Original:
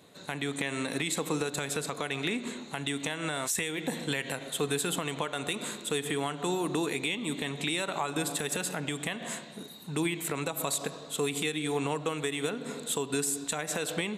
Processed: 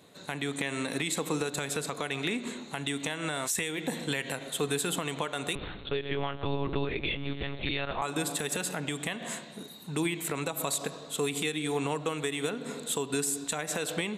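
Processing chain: 5.55–8.02 s: monotone LPC vocoder at 8 kHz 140 Hz

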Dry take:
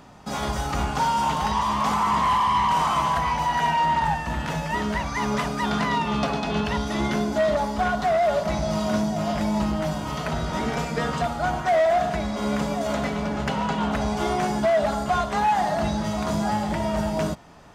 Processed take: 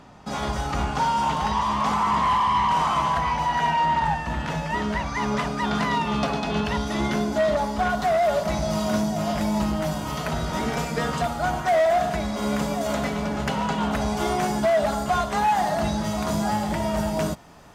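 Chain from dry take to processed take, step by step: treble shelf 10 kHz -10 dB, from 5.75 s +2 dB, from 7.90 s +10.5 dB

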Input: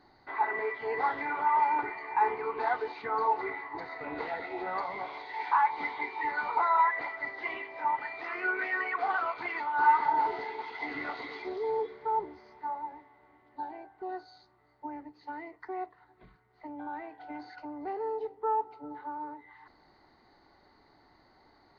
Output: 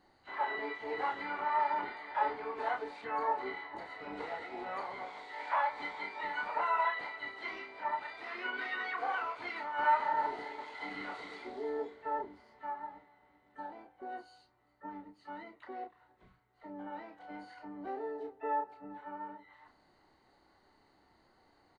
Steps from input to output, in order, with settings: dynamic bell 160 Hz, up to -3 dB, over -59 dBFS, Q 3; harmony voices -7 st -11 dB, +7 st -16 dB, +12 st -16 dB; doubling 31 ms -5 dB; trim -7 dB

